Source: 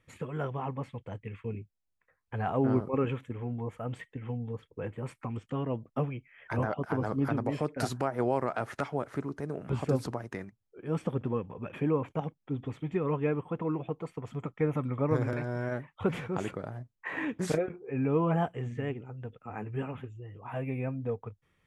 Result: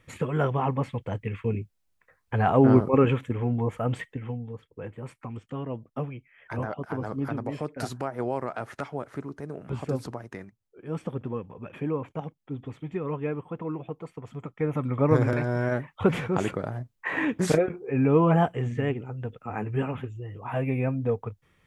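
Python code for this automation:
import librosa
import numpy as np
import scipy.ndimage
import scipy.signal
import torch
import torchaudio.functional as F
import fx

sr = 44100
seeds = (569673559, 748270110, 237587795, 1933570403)

y = fx.gain(x, sr, db=fx.line((3.99, 9.0), (4.48, -1.0), (14.49, -1.0), (15.08, 7.0)))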